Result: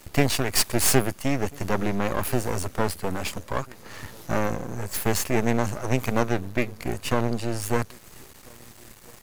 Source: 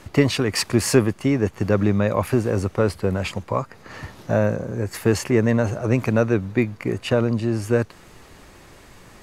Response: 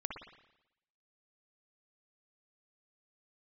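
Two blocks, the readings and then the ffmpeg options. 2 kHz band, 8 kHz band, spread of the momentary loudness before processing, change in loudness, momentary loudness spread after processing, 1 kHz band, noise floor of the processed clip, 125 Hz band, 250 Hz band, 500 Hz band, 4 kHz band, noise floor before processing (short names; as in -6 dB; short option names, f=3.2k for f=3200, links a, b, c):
-2.0 dB, +3.5 dB, 8 LU, -4.5 dB, 10 LU, +1.0 dB, -49 dBFS, -6.5 dB, -6.5 dB, -6.5 dB, -0.5 dB, -48 dBFS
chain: -filter_complex "[0:a]aemphasis=mode=production:type=50fm,asplit=2[a][b];[b]adelay=1341,volume=-26dB,highshelf=f=4k:g=-30.2[c];[a][c]amix=inputs=2:normalize=0,aeval=exprs='max(val(0),0)':c=same"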